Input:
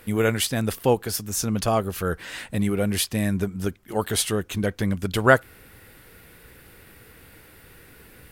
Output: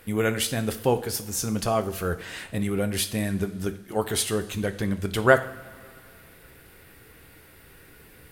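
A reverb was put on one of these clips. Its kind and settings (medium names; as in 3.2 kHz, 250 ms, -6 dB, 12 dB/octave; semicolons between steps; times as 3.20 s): two-slope reverb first 0.51 s, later 2.8 s, from -18 dB, DRR 8 dB; trim -2.5 dB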